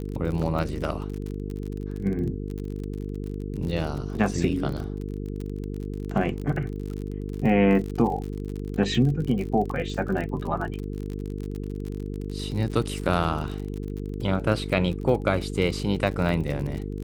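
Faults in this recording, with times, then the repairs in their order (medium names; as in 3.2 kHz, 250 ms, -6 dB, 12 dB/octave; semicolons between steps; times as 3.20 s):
buzz 50 Hz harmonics 9 -32 dBFS
crackle 46 per s -31 dBFS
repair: de-click; de-hum 50 Hz, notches 9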